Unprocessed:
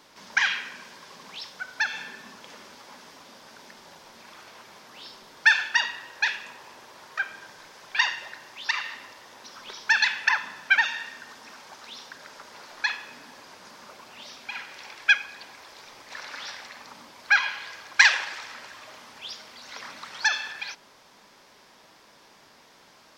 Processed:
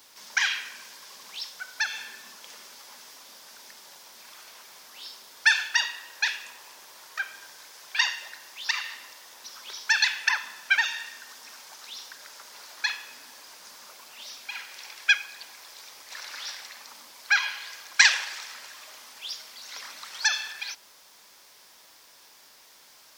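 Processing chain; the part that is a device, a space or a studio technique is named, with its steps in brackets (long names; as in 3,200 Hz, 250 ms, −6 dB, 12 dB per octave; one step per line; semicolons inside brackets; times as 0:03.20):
turntable without a phono preamp (RIAA equalisation recording; white noise bed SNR 32 dB)
level −4.5 dB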